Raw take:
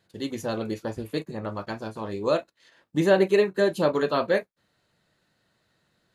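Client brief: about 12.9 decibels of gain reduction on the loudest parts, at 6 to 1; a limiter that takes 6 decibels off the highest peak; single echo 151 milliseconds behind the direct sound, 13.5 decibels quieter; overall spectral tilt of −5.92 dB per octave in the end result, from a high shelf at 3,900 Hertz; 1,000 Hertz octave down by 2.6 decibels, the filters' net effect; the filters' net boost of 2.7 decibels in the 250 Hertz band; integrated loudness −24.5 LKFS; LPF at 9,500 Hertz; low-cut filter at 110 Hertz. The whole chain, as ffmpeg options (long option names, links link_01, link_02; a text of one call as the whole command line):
ffmpeg -i in.wav -af "highpass=110,lowpass=9500,equalizer=frequency=250:width_type=o:gain=4.5,equalizer=frequency=1000:width_type=o:gain=-3.5,highshelf=frequency=3900:gain=-3.5,acompressor=threshold=-29dB:ratio=6,alimiter=level_in=1dB:limit=-24dB:level=0:latency=1,volume=-1dB,aecho=1:1:151:0.211,volume=11.5dB" out.wav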